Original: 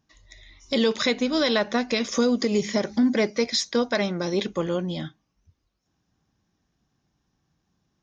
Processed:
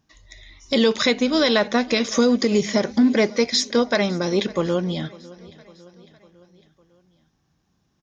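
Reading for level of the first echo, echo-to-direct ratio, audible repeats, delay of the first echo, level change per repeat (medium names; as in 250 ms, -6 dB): -22.0 dB, -20.5 dB, 3, 553 ms, -5.0 dB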